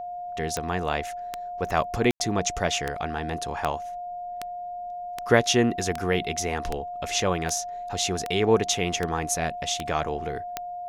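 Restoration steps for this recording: de-click; notch 710 Hz, Q 30; room tone fill 2.11–2.2

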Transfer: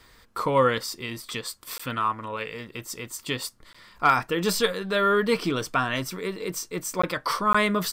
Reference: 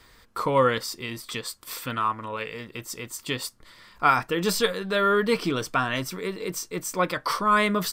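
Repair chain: clip repair -9 dBFS; interpolate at 1.78/3.73/7.02/7.53, 15 ms

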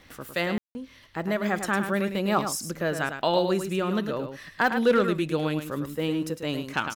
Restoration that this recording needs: clip repair -12.5 dBFS; de-click; room tone fill 0.58–0.75; inverse comb 0.105 s -8 dB

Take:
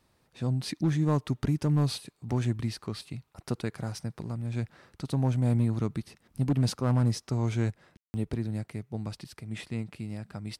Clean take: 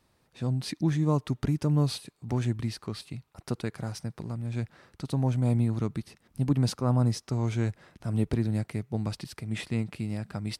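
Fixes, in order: clip repair -19 dBFS; room tone fill 7.97–8.14; gain 0 dB, from 7.7 s +4.5 dB

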